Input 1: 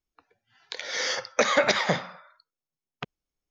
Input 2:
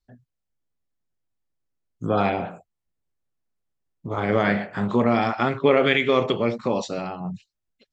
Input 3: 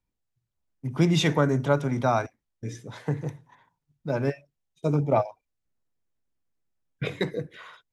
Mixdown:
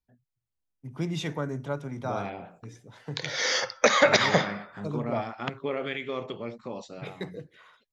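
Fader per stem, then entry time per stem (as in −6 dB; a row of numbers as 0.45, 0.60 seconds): +2.0, −13.5, −9.5 decibels; 2.45, 0.00, 0.00 seconds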